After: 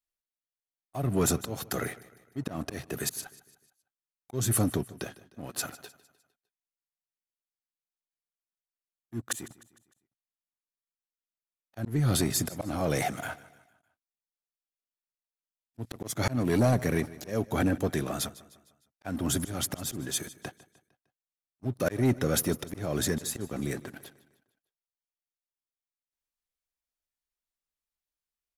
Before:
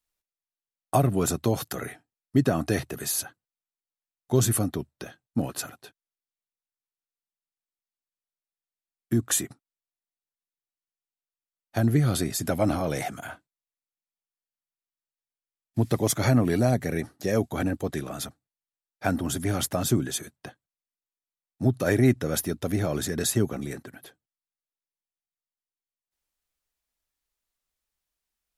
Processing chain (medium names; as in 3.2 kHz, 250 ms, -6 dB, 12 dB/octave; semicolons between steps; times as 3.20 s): slow attack 295 ms; waveshaping leveller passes 2; on a send: feedback delay 152 ms, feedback 47%, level -19 dB; on the sum: trim -5.5 dB